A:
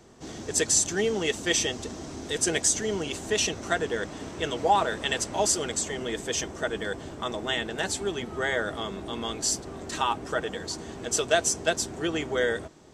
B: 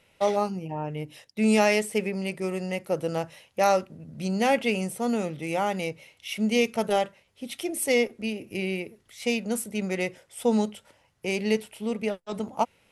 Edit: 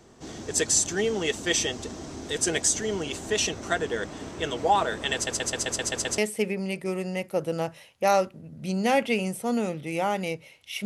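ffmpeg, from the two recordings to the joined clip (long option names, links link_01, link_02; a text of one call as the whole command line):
ffmpeg -i cue0.wav -i cue1.wav -filter_complex "[0:a]apad=whole_dur=10.85,atrim=end=10.85,asplit=8[link_01][link_02][link_03][link_04][link_05][link_06][link_07][link_08];[link_01]atrim=end=5.272[link_09];[link_02]atrim=start=5.138:end=5.272[link_10];[link_03]atrim=start=5.138:end=5.272[link_11];[link_04]atrim=start=5.138:end=5.272[link_12];[link_05]atrim=start=5.138:end=5.272[link_13];[link_06]atrim=start=5.138:end=5.272[link_14];[link_07]atrim=start=5.138:end=5.272[link_15];[link_08]atrim=start=5.138:end=5.272[link_16];[1:a]atrim=start=1.738:end=6.41[link_17];[link_09][link_10]acrossfade=duration=0.004:curve1=hsin:curve2=hsin[link_18];[link_18][link_11]acrossfade=duration=0.004:curve1=hsin:curve2=hsin[link_19];[link_19][link_12]acrossfade=duration=0.004:curve1=hsin:curve2=hsin[link_20];[link_20][link_13]acrossfade=duration=0.004:curve1=hsin:curve2=hsin[link_21];[link_21][link_14]acrossfade=duration=0.004:curve1=hsin:curve2=hsin[link_22];[link_22][link_15]acrossfade=duration=0.004:curve1=hsin:curve2=hsin[link_23];[link_23][link_16]acrossfade=duration=0.004:curve1=hsin:curve2=hsin[link_24];[link_24][link_17]acrossfade=duration=0.004:curve1=hsin:curve2=hsin" out.wav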